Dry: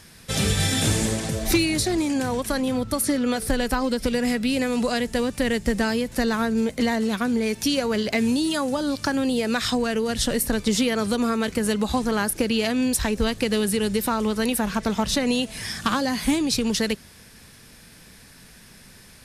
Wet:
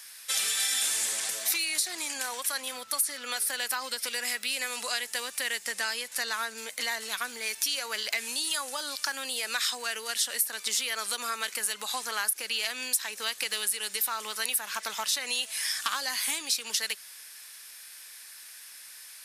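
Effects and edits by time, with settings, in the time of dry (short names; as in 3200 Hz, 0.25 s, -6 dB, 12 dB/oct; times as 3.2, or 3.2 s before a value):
5.64–6.58 LPF 12000 Hz
whole clip: HPF 1300 Hz 12 dB/oct; high shelf 8600 Hz +10.5 dB; compressor 3:1, threshold -26 dBFS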